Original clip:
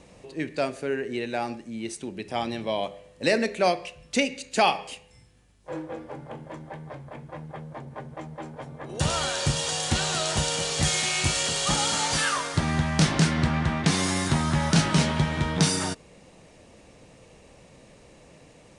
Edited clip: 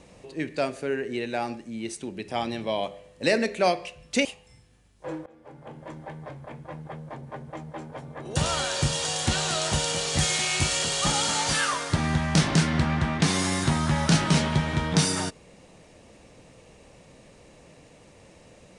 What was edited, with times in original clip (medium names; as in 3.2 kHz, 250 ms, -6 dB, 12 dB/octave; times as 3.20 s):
4.25–4.89 s: delete
5.90–6.59 s: fade in, from -24 dB